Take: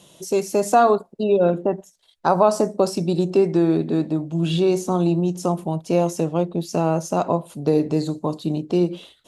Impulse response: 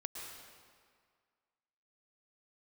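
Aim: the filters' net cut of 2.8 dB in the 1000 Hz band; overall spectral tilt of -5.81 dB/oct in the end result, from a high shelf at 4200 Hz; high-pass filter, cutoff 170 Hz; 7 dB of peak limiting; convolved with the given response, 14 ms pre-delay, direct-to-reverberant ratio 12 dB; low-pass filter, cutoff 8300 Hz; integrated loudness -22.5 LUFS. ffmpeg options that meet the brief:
-filter_complex "[0:a]highpass=170,lowpass=8.3k,equalizer=f=1k:t=o:g=-4.5,highshelf=f=4.2k:g=4.5,alimiter=limit=-12.5dB:level=0:latency=1,asplit=2[a][b];[1:a]atrim=start_sample=2205,adelay=14[c];[b][c]afir=irnorm=-1:irlink=0,volume=-11dB[d];[a][d]amix=inputs=2:normalize=0,volume=1.5dB"

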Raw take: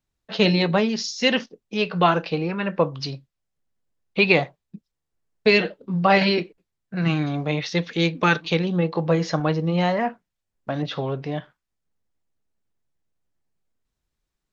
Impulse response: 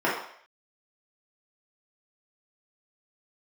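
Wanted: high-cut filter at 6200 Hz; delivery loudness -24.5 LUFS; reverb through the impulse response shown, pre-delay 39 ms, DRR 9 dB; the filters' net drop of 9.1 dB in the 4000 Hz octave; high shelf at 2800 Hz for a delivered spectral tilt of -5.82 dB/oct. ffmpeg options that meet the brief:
-filter_complex "[0:a]lowpass=6.2k,highshelf=f=2.8k:g=-8.5,equalizer=f=4k:t=o:g=-5,asplit=2[a][b];[1:a]atrim=start_sample=2205,adelay=39[c];[b][c]afir=irnorm=-1:irlink=0,volume=-25dB[d];[a][d]amix=inputs=2:normalize=0,volume=-1dB"

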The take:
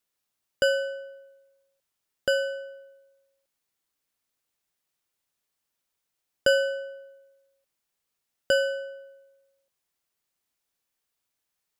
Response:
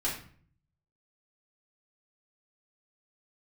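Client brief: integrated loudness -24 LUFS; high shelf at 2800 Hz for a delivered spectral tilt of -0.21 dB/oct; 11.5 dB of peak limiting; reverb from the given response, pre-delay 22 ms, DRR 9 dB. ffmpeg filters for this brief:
-filter_complex "[0:a]highshelf=f=2.8k:g=7.5,alimiter=limit=-17.5dB:level=0:latency=1,asplit=2[a][b];[1:a]atrim=start_sample=2205,adelay=22[c];[b][c]afir=irnorm=-1:irlink=0,volume=-15dB[d];[a][d]amix=inputs=2:normalize=0,volume=4.5dB"

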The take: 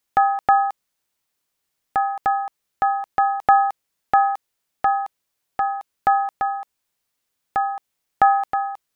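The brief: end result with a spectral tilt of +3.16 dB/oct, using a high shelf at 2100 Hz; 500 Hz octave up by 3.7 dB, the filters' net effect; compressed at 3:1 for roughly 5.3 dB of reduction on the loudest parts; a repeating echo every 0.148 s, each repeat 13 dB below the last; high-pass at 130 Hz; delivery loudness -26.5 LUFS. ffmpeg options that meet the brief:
-af "highpass=130,equalizer=f=500:t=o:g=6,highshelf=f=2.1k:g=-8.5,acompressor=threshold=-17dB:ratio=3,aecho=1:1:148|296|444:0.224|0.0493|0.0108,volume=-3dB"

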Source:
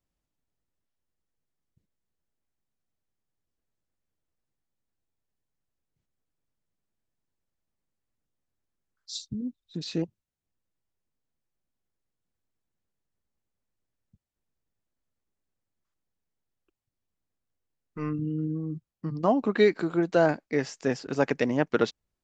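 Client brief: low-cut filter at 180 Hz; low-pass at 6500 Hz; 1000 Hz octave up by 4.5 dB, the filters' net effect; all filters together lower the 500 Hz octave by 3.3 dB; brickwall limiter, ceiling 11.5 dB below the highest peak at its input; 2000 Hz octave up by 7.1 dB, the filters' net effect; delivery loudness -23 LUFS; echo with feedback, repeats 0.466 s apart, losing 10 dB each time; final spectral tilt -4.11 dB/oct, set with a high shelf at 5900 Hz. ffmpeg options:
-af "highpass=180,lowpass=6.5k,equalizer=f=500:t=o:g=-6.5,equalizer=f=1k:t=o:g=7,equalizer=f=2k:t=o:g=7.5,highshelf=f=5.9k:g=-5.5,alimiter=limit=-18.5dB:level=0:latency=1,aecho=1:1:466|932|1398|1864:0.316|0.101|0.0324|0.0104,volume=9.5dB"

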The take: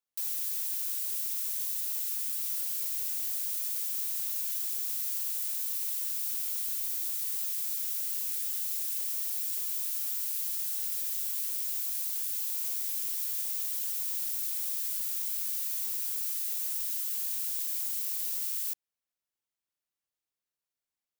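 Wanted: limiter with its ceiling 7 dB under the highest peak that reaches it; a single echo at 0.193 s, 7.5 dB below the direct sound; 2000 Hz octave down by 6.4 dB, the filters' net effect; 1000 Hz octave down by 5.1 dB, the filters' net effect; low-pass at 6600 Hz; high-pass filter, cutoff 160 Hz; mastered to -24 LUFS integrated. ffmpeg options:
-af "highpass=160,lowpass=6.6k,equalizer=f=1k:t=o:g=-4,equalizer=f=2k:t=o:g=-7.5,alimiter=level_in=16.5dB:limit=-24dB:level=0:latency=1,volume=-16.5dB,aecho=1:1:193:0.422,volume=22.5dB"

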